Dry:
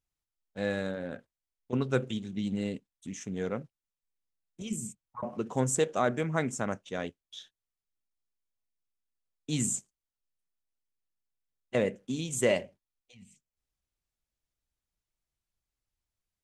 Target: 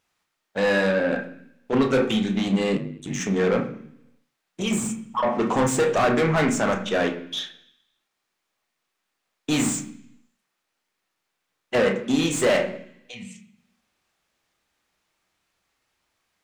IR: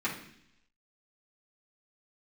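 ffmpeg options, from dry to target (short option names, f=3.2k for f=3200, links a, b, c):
-filter_complex "[0:a]asplit=2[a][b];[b]highpass=f=720:p=1,volume=29dB,asoftclip=type=tanh:threshold=-12.5dB[c];[a][c]amix=inputs=2:normalize=0,lowpass=f=2.4k:p=1,volume=-6dB,asplit=2[d][e];[1:a]atrim=start_sample=2205,adelay=27[f];[e][f]afir=irnorm=-1:irlink=0,volume=-11dB[g];[d][g]amix=inputs=2:normalize=0,asettb=1/sr,asplit=3[h][i][j];[h]atrim=end=2.764[k];[i]atrim=start=2.76:end=3.2,asetpts=PTS-STARTPTS,afade=t=in:d=0.004:c=qsin,afade=t=out:st=0.436:d=0.004:c=qsin,aeval=exprs='val(0)*sin(2*PI*49*n/s)':c=same[l];[j]atrim=start=3.196[m];[k][l]acrossfade=d=0.004:c1=hsin:c2=qsin[n];[n][m]acrossfade=d=0.004:c1=qsin:c2=hsin"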